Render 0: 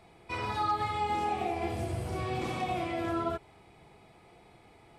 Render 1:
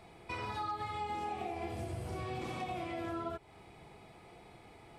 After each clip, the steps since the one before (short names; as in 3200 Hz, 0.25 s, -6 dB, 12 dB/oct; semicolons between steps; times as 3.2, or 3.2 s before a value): compressor 2.5:1, threshold -42 dBFS, peak gain reduction 11 dB; gain +1.5 dB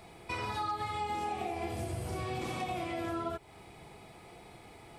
high shelf 6100 Hz +7.5 dB; gain +3 dB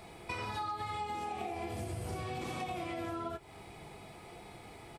compressor, threshold -37 dBFS, peak gain reduction 6.5 dB; doubler 20 ms -13 dB; gain +1.5 dB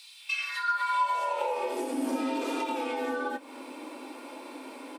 high-pass sweep 3600 Hz -> 110 Hz, 0.16–2.05; frequency shift +160 Hz; gain +6 dB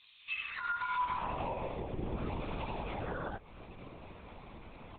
LPC vocoder at 8 kHz whisper; gain -7 dB